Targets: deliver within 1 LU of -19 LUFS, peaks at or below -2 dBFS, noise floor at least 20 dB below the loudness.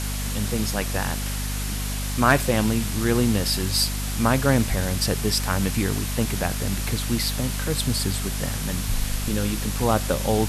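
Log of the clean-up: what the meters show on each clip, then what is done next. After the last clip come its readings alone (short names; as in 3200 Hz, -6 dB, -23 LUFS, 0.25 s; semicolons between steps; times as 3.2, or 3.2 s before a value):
hum 50 Hz; harmonics up to 250 Hz; hum level -26 dBFS; noise floor -28 dBFS; noise floor target -44 dBFS; loudness -24.0 LUFS; peak -5.0 dBFS; loudness target -19.0 LUFS
-> notches 50/100/150/200/250 Hz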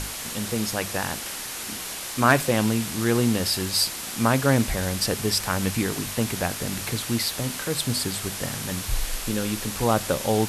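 hum none; noise floor -34 dBFS; noise floor target -45 dBFS
-> noise print and reduce 11 dB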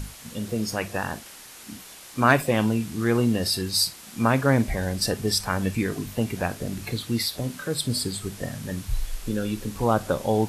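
noise floor -45 dBFS; noise floor target -46 dBFS
-> noise print and reduce 6 dB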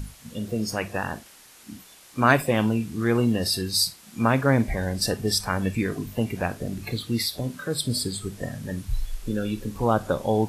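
noise floor -51 dBFS; loudness -25.5 LUFS; peak -4.5 dBFS; loudness target -19.0 LUFS
-> gain +6.5 dB; limiter -2 dBFS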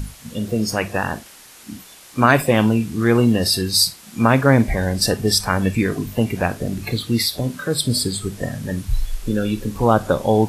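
loudness -19.5 LUFS; peak -2.0 dBFS; noise floor -44 dBFS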